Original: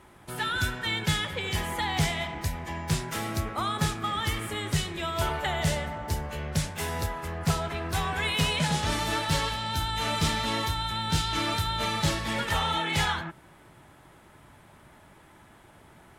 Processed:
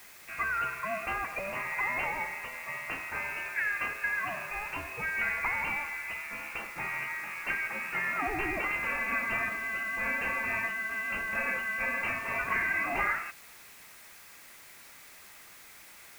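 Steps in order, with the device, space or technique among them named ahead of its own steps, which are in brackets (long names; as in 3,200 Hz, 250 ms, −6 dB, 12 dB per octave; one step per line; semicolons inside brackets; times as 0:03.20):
scrambled radio voice (band-pass filter 390–2,900 Hz; voice inversion scrambler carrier 2,900 Hz; white noise bed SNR 19 dB)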